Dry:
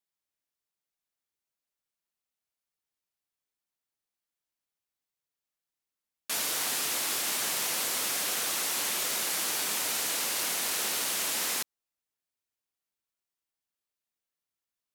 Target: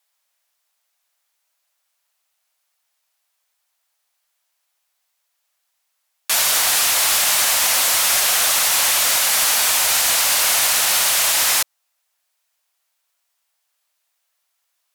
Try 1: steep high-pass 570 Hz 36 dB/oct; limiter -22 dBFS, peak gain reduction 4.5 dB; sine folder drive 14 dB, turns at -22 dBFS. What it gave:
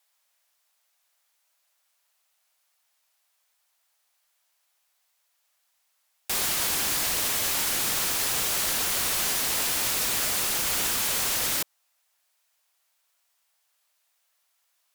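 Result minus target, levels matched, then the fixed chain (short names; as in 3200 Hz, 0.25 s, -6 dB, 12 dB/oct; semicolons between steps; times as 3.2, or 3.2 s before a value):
sine folder: distortion +25 dB
steep high-pass 570 Hz 36 dB/oct; limiter -22 dBFS, peak gain reduction 4.5 dB; sine folder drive 14 dB, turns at -12.5 dBFS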